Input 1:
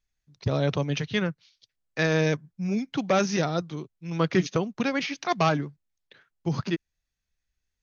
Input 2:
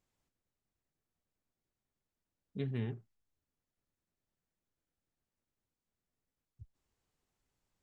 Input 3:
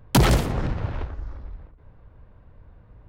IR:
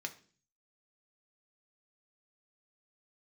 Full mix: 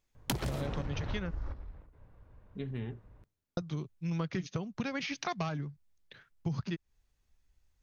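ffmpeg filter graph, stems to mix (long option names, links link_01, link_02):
-filter_complex "[0:a]asubboost=boost=3.5:cutoff=160,volume=0dB,asplit=3[link_01][link_02][link_03];[link_01]atrim=end=1.31,asetpts=PTS-STARTPTS,afade=type=out:start_time=1.306:duration=0.004:curve=hsin[link_04];[link_02]atrim=start=1.31:end=3.57,asetpts=PTS-STARTPTS,volume=0[link_05];[link_03]atrim=start=3.57,asetpts=PTS-STARTPTS,afade=type=in:duration=0.004:curve=hsin[link_06];[link_04][link_05][link_06]concat=n=3:v=0:a=1,asplit=2[link_07][link_08];[1:a]volume=-2.5dB,asplit=2[link_09][link_10];[link_10]volume=-9.5dB[link_11];[2:a]alimiter=limit=-18dB:level=0:latency=1:release=93,adelay=150,volume=2.5dB,asplit=2[link_12][link_13];[link_13]volume=-22.5dB[link_14];[link_08]apad=whole_len=142795[link_15];[link_12][link_15]sidechaingate=range=-11dB:threshold=-57dB:ratio=16:detection=peak[link_16];[3:a]atrim=start_sample=2205[link_17];[link_11][link_14]amix=inputs=2:normalize=0[link_18];[link_18][link_17]afir=irnorm=-1:irlink=0[link_19];[link_07][link_09][link_16][link_19]amix=inputs=4:normalize=0,acompressor=threshold=-31dB:ratio=12"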